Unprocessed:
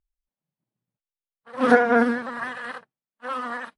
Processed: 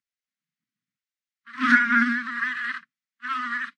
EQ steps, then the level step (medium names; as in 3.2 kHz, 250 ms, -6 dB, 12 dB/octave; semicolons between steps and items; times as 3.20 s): inverse Chebyshev band-stop 390–900 Hz, stop band 40 dB; cabinet simulation 300–7100 Hz, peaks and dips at 610 Hz +9 dB, 1 kHz +7 dB, 2 kHz +6 dB; +3.5 dB